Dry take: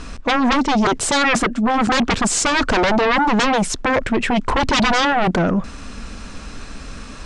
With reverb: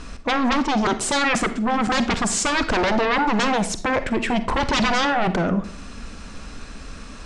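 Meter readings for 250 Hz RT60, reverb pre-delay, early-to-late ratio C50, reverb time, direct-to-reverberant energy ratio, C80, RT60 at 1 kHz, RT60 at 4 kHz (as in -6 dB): 0.55 s, 39 ms, 12.5 dB, 0.50 s, 11.0 dB, 17.0 dB, 0.45 s, 0.35 s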